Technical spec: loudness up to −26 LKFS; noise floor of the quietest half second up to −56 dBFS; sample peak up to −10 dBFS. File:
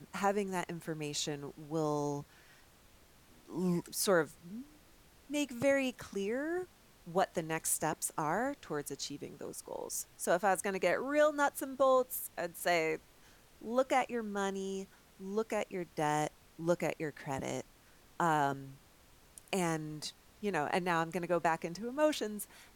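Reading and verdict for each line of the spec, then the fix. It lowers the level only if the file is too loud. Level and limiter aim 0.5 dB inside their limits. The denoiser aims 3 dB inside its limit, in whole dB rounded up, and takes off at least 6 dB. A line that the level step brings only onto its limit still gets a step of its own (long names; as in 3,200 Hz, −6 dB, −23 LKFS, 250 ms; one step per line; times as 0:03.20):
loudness −35.0 LKFS: in spec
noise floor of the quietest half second −62 dBFS: in spec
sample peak −18.5 dBFS: in spec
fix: no processing needed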